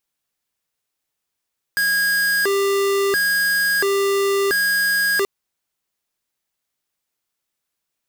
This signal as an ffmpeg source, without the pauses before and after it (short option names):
-f lavfi -i "aevalsrc='0.119*(2*lt(mod((1018*t+622/0.73*(0.5-abs(mod(0.73*t,1)-0.5))),1),0.5)-1)':d=3.48:s=44100"